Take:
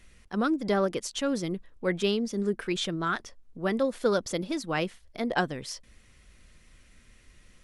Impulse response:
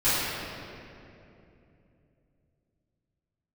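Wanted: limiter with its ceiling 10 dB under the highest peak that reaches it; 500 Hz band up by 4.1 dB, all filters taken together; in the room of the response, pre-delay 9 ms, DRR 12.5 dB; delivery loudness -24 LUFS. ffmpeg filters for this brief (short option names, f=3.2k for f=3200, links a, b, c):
-filter_complex "[0:a]equalizer=f=500:t=o:g=5,alimiter=limit=-19.5dB:level=0:latency=1,asplit=2[a][b];[1:a]atrim=start_sample=2205,adelay=9[c];[b][c]afir=irnorm=-1:irlink=0,volume=-28.5dB[d];[a][d]amix=inputs=2:normalize=0,volume=6dB"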